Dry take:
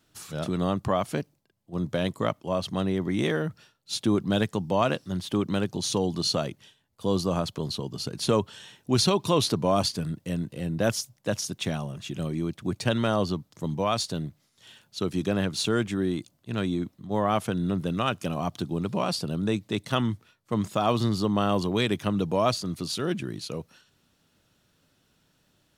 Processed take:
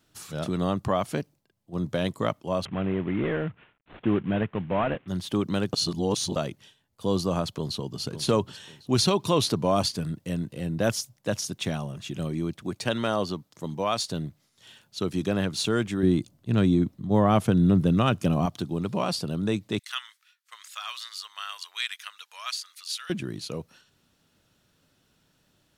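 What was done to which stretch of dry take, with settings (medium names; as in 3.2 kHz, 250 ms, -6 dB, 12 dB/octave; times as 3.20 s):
2.65–5.08 s: CVSD coder 16 kbps
5.73–6.36 s: reverse
7.46–8.01 s: echo throw 550 ms, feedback 30%, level -11 dB
12.62–14.09 s: bass shelf 160 Hz -9.5 dB
16.03–18.46 s: bass shelf 390 Hz +9.5 dB
19.79–23.10 s: high-pass 1.5 kHz 24 dB/octave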